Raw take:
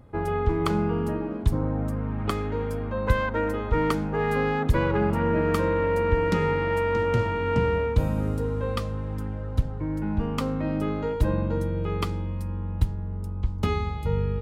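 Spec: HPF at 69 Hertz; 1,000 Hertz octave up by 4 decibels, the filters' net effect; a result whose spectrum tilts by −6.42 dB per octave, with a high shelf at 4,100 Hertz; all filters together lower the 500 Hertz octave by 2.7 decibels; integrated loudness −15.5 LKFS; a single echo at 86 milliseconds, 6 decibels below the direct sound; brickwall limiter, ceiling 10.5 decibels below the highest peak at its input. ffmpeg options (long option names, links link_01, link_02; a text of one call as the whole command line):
ffmpeg -i in.wav -af "highpass=69,equalizer=frequency=500:width_type=o:gain=-4,equalizer=frequency=1000:width_type=o:gain=5.5,highshelf=frequency=4100:gain=3,alimiter=limit=-18dB:level=0:latency=1,aecho=1:1:86:0.501,volume=11.5dB" out.wav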